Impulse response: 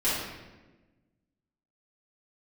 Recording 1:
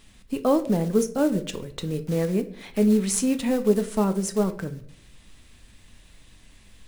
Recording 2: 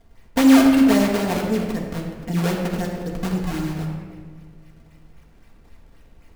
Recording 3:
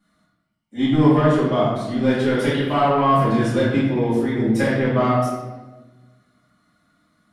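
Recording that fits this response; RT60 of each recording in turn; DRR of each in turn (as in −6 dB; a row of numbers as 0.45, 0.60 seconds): 3; 0.60, 1.6, 1.2 seconds; 8.0, −2.0, −12.5 decibels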